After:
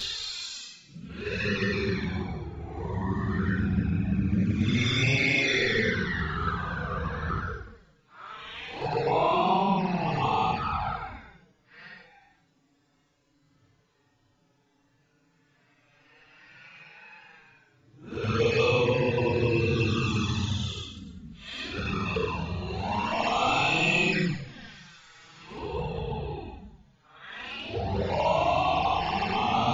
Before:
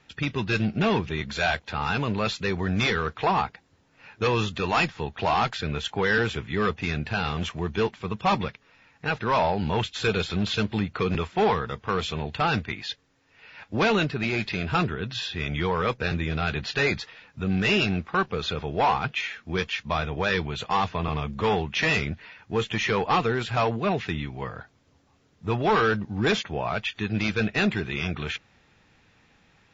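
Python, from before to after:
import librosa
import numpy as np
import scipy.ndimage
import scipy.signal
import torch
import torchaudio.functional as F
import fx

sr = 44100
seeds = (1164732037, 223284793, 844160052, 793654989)

y = fx.paulstretch(x, sr, seeds[0], factor=9.5, window_s=0.05, from_s=2.3)
y = fx.env_flanger(y, sr, rest_ms=7.1, full_db=-18.0)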